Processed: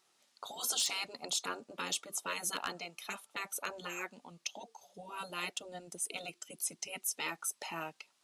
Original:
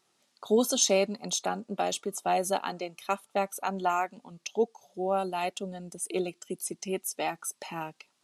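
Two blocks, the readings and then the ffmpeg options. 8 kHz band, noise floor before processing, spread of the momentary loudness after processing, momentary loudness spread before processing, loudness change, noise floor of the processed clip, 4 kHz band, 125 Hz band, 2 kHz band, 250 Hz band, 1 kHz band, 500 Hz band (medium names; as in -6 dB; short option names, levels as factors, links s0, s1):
-4.5 dB, -73 dBFS, 12 LU, 13 LU, -7.5 dB, -74 dBFS, -2.0 dB, -14.0 dB, -1.5 dB, -17.0 dB, -12.5 dB, -18.5 dB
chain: -af "afftfilt=real='re*lt(hypot(re,im),0.1)':imag='im*lt(hypot(re,im),0.1)':win_size=1024:overlap=0.75,lowshelf=f=380:g=-9.5,aeval=exprs='0.0794*(abs(mod(val(0)/0.0794+3,4)-2)-1)':c=same"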